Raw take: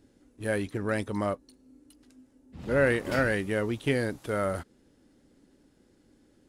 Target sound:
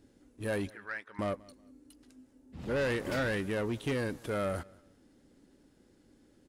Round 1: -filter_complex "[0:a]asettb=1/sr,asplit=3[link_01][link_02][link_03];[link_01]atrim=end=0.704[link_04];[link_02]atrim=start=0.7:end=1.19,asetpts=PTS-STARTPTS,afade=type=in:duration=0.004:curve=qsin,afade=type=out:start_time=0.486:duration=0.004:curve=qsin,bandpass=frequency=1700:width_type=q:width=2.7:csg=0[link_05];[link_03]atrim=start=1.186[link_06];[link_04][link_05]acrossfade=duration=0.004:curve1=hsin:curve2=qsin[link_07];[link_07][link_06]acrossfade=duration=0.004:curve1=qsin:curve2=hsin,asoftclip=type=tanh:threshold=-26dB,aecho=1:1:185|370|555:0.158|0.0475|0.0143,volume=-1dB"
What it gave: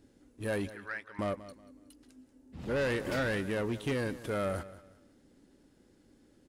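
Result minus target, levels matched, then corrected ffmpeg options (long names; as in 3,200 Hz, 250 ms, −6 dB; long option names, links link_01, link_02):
echo-to-direct +8 dB
-filter_complex "[0:a]asettb=1/sr,asplit=3[link_01][link_02][link_03];[link_01]atrim=end=0.704[link_04];[link_02]atrim=start=0.7:end=1.19,asetpts=PTS-STARTPTS,afade=type=in:duration=0.004:curve=qsin,afade=type=out:start_time=0.486:duration=0.004:curve=qsin,bandpass=frequency=1700:width_type=q:width=2.7:csg=0[link_05];[link_03]atrim=start=1.186[link_06];[link_04][link_05]acrossfade=duration=0.004:curve1=hsin:curve2=qsin[link_07];[link_07][link_06]acrossfade=duration=0.004:curve1=qsin:curve2=hsin,asoftclip=type=tanh:threshold=-26dB,aecho=1:1:185|370:0.0631|0.0189,volume=-1dB"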